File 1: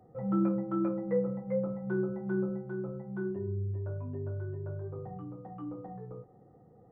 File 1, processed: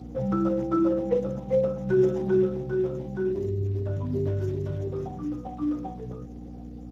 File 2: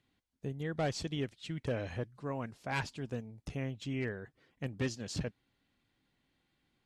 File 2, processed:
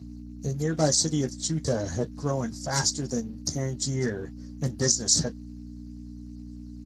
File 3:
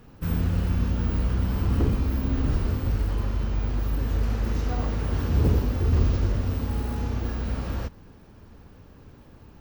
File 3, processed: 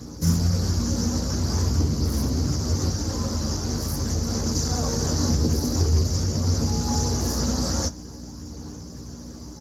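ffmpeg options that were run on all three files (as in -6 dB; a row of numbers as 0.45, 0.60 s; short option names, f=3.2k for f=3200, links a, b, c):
-af "aphaser=in_gain=1:out_gain=1:delay=3.9:decay=0.23:speed=0.46:type=sinusoidal,acompressor=threshold=-24dB:ratio=12,aeval=exprs='val(0)+0.00708*(sin(2*PI*60*n/s)+sin(2*PI*2*60*n/s)/2+sin(2*PI*3*60*n/s)/3+sin(2*PI*4*60*n/s)/4+sin(2*PI*5*60*n/s)/5)':c=same,asuperstop=centerf=2500:order=12:qfactor=3.7,highshelf=f=4.2k:t=q:w=3:g=13,aecho=1:1:13|37:0.531|0.141,alimiter=level_in=15dB:limit=-1dB:release=50:level=0:latency=1,volume=-7.5dB" -ar 32000 -c:a libspeex -b:a 15k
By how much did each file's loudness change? +7.5, +12.0, +2.0 LU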